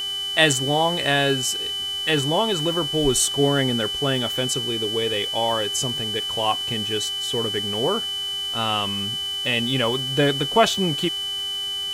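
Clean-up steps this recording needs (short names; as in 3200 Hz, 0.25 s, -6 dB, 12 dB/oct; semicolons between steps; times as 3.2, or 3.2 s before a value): de-click; de-hum 393.9 Hz, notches 31; notch 3000 Hz, Q 30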